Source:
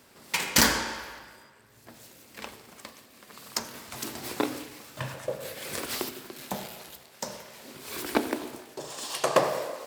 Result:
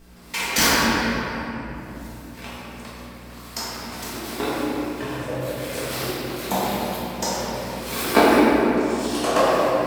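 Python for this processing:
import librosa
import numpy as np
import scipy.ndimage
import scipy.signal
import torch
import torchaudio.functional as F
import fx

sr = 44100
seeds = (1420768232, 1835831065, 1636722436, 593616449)

y = fx.add_hum(x, sr, base_hz=60, snr_db=15)
y = fx.hpss(y, sr, part='percussive', gain_db=9, at=(6.25, 8.36))
y = fx.room_shoebox(y, sr, seeds[0], volume_m3=190.0, walls='hard', distance_m=1.6)
y = F.gain(torch.from_numpy(y), -4.0).numpy()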